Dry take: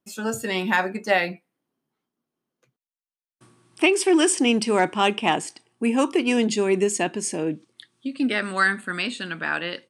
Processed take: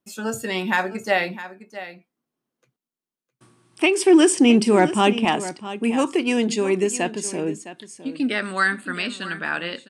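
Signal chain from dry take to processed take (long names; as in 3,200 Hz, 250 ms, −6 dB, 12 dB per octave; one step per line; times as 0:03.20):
0:03.97–0:05.25: low-shelf EQ 390 Hz +9 dB
single-tap delay 660 ms −14 dB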